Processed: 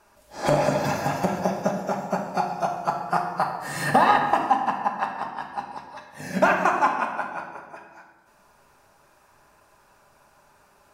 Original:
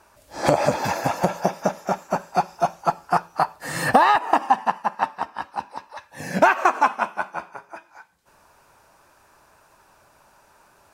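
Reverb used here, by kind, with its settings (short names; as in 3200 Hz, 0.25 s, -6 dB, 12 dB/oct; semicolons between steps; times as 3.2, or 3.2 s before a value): shoebox room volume 820 m³, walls mixed, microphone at 1.3 m; gain -4.5 dB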